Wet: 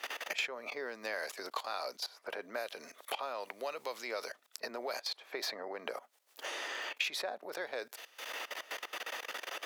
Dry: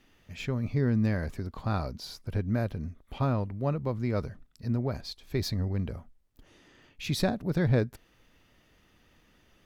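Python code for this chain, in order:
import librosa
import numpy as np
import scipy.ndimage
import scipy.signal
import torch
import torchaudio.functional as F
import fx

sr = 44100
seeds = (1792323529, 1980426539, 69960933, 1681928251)

y = fx.level_steps(x, sr, step_db=21)
y = scipy.signal.sosfilt(scipy.signal.butter(4, 530.0, 'highpass', fs=sr, output='sos'), y)
y = fx.band_squash(y, sr, depth_pct=100)
y = y * librosa.db_to_amplitude(12.5)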